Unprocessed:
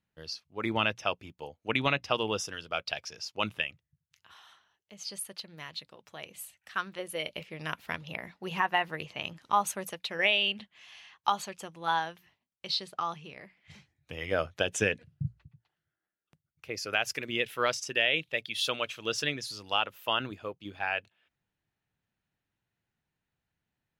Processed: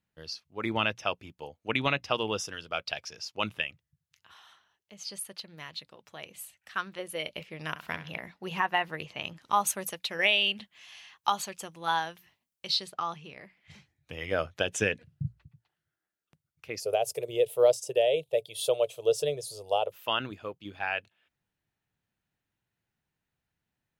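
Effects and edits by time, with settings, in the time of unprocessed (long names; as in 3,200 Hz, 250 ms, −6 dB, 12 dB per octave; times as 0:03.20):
0:07.69–0:08.20: flutter between parallel walls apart 11.5 metres, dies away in 0.36 s
0:09.48–0:12.90: high-shelf EQ 5,400 Hz +8 dB
0:16.80–0:19.92: drawn EQ curve 150 Hz 0 dB, 250 Hz −21 dB, 430 Hz +11 dB, 630 Hz +11 dB, 1,600 Hz −21 dB, 3,400 Hz −6 dB, 5,800 Hz −6 dB, 8,800 Hz +8 dB, 14,000 Hz +5 dB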